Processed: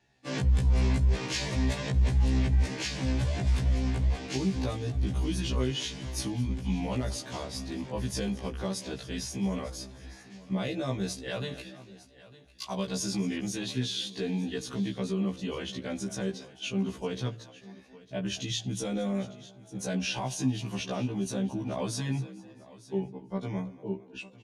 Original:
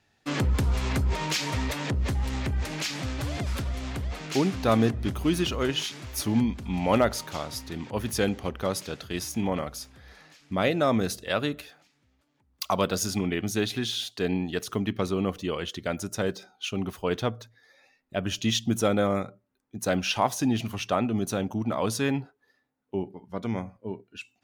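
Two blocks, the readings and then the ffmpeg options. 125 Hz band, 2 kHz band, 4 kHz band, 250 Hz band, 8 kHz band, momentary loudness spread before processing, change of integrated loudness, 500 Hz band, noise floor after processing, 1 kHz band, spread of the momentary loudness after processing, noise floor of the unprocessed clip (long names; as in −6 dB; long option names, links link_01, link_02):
+0.5 dB, −6.0 dB, −4.0 dB, −3.5 dB, −3.5 dB, 10 LU, −3.0 dB, −7.5 dB, −53 dBFS, −9.5 dB, 12 LU, −71 dBFS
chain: -filter_complex "[0:a]lowpass=frequency=9800:width=0.5412,lowpass=frequency=9800:width=1.3066,lowshelf=frequency=270:gain=8,acrossover=split=140|3000[link_01][link_02][link_03];[link_02]acompressor=threshold=-26dB:ratio=6[link_04];[link_01][link_04][link_03]amix=inputs=3:normalize=0,lowshelf=frequency=81:gain=-7,asplit=2[link_05][link_06];[link_06]asplit=4[link_07][link_08][link_09][link_10];[link_07]adelay=222,afreqshift=45,volume=-20dB[link_11];[link_08]adelay=444,afreqshift=90,volume=-25.7dB[link_12];[link_09]adelay=666,afreqshift=135,volume=-31.4dB[link_13];[link_10]adelay=888,afreqshift=180,volume=-37dB[link_14];[link_11][link_12][link_13][link_14]amix=inputs=4:normalize=0[link_15];[link_05][link_15]amix=inputs=2:normalize=0,alimiter=limit=-19.5dB:level=0:latency=1:release=23,bandreject=frequency=1300:width=7.3,asplit=2[link_16][link_17];[link_17]aecho=0:1:903:0.112[link_18];[link_16][link_18]amix=inputs=2:normalize=0,afftfilt=real='re*1.73*eq(mod(b,3),0)':imag='im*1.73*eq(mod(b,3),0)':win_size=2048:overlap=0.75"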